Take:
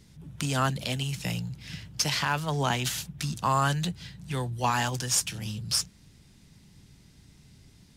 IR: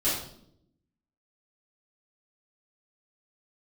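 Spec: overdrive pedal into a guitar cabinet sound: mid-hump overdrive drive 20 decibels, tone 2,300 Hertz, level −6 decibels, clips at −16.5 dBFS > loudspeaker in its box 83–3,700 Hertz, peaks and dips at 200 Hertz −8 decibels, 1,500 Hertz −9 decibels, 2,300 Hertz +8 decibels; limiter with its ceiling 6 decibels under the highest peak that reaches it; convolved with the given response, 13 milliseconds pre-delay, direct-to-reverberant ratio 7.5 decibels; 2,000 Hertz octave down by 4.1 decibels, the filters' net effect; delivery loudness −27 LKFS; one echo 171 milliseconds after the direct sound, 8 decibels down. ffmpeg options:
-filter_complex "[0:a]equalizer=frequency=2000:width_type=o:gain=-5.5,alimiter=limit=-19.5dB:level=0:latency=1,aecho=1:1:171:0.398,asplit=2[link_01][link_02];[1:a]atrim=start_sample=2205,adelay=13[link_03];[link_02][link_03]afir=irnorm=-1:irlink=0,volume=-17.5dB[link_04];[link_01][link_04]amix=inputs=2:normalize=0,asplit=2[link_05][link_06];[link_06]highpass=frequency=720:poles=1,volume=20dB,asoftclip=type=tanh:threshold=-16.5dB[link_07];[link_05][link_07]amix=inputs=2:normalize=0,lowpass=frequency=2300:poles=1,volume=-6dB,highpass=83,equalizer=frequency=200:width_type=q:width=4:gain=-8,equalizer=frequency=1500:width_type=q:width=4:gain=-9,equalizer=frequency=2300:width_type=q:width=4:gain=8,lowpass=frequency=3700:width=0.5412,lowpass=frequency=3700:width=1.3066,volume=2dB"

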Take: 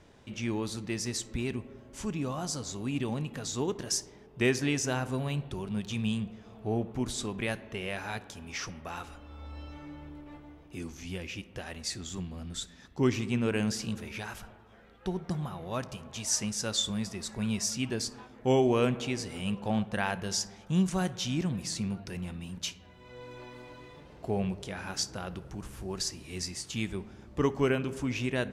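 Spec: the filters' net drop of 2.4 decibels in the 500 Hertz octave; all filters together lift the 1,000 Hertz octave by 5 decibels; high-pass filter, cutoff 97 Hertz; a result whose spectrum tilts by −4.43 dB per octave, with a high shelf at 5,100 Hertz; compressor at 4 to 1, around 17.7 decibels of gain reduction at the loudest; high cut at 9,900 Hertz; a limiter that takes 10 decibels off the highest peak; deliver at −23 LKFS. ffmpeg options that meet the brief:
ffmpeg -i in.wav -af "highpass=97,lowpass=9900,equalizer=frequency=500:width_type=o:gain=-5,equalizer=frequency=1000:width_type=o:gain=8.5,highshelf=frequency=5100:gain=-8.5,acompressor=threshold=-44dB:ratio=4,volume=25dB,alimiter=limit=-12.5dB:level=0:latency=1" out.wav

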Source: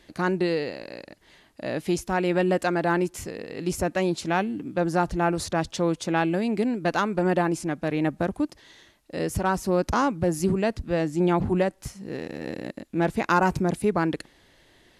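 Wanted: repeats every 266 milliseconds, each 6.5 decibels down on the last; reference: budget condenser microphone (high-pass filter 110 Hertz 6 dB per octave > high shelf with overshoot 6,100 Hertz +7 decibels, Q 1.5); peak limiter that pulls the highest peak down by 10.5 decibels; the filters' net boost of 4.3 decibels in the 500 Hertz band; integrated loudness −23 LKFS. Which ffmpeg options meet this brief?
ffmpeg -i in.wav -af "equalizer=frequency=500:width_type=o:gain=6,alimiter=limit=-17.5dB:level=0:latency=1,highpass=frequency=110:poles=1,highshelf=frequency=6100:width_type=q:width=1.5:gain=7,aecho=1:1:266|532|798|1064|1330|1596:0.473|0.222|0.105|0.0491|0.0231|0.0109,volume=4dB" out.wav

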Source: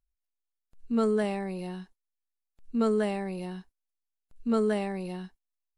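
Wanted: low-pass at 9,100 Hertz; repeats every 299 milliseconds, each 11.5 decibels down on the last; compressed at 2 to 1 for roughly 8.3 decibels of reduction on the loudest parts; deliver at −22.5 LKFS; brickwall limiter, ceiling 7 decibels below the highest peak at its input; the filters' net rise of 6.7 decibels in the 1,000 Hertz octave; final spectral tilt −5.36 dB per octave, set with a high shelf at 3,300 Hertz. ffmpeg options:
ffmpeg -i in.wav -af "lowpass=9100,equalizer=frequency=1000:width_type=o:gain=8.5,highshelf=frequency=3300:gain=9,acompressor=threshold=-36dB:ratio=2,alimiter=level_in=6dB:limit=-24dB:level=0:latency=1,volume=-6dB,aecho=1:1:299|598|897:0.266|0.0718|0.0194,volume=16.5dB" out.wav

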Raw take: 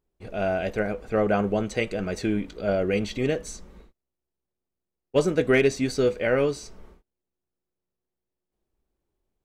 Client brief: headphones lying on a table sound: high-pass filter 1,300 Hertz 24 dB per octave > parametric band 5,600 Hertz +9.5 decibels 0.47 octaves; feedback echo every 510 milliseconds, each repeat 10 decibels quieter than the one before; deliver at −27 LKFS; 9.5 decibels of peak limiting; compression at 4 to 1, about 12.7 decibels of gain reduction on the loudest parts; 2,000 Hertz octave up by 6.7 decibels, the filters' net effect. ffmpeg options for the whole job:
ffmpeg -i in.wav -af "equalizer=frequency=2000:width_type=o:gain=8.5,acompressor=threshold=-29dB:ratio=4,alimiter=limit=-24dB:level=0:latency=1,highpass=frequency=1300:width=0.5412,highpass=frequency=1300:width=1.3066,equalizer=frequency=5600:width_type=o:width=0.47:gain=9.5,aecho=1:1:510|1020|1530|2040:0.316|0.101|0.0324|0.0104,volume=12.5dB" out.wav

